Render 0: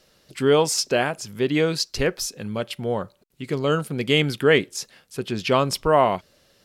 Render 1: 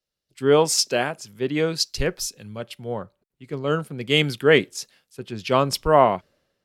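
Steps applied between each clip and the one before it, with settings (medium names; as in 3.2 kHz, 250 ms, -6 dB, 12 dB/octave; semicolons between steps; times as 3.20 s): three bands expanded up and down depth 70%; trim -1.5 dB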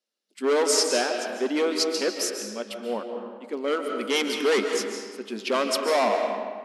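hard clipper -19 dBFS, distortion -5 dB; algorithmic reverb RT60 1.6 s, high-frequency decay 0.7×, pre-delay 105 ms, DRR 4 dB; FFT band-pass 200–12000 Hz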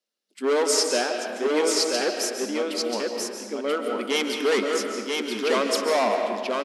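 delay 984 ms -3.5 dB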